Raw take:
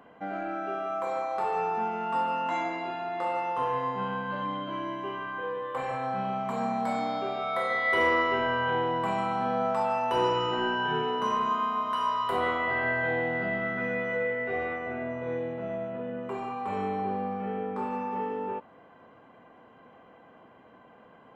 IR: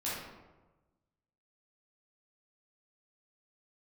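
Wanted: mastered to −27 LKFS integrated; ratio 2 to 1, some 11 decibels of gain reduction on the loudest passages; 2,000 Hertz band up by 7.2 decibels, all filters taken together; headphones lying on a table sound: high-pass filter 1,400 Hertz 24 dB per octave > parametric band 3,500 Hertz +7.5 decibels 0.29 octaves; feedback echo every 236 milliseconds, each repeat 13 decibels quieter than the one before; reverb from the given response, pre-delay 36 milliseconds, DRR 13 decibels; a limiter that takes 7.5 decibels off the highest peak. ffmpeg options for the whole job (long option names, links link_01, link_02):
-filter_complex "[0:a]equalizer=frequency=2000:width_type=o:gain=8,acompressor=threshold=-37dB:ratio=2,alimiter=level_in=4dB:limit=-24dB:level=0:latency=1,volume=-4dB,aecho=1:1:236|472|708:0.224|0.0493|0.0108,asplit=2[link_01][link_02];[1:a]atrim=start_sample=2205,adelay=36[link_03];[link_02][link_03]afir=irnorm=-1:irlink=0,volume=-17.5dB[link_04];[link_01][link_04]amix=inputs=2:normalize=0,highpass=frequency=1400:width=0.5412,highpass=frequency=1400:width=1.3066,equalizer=frequency=3500:width_type=o:width=0.29:gain=7.5,volume=13dB"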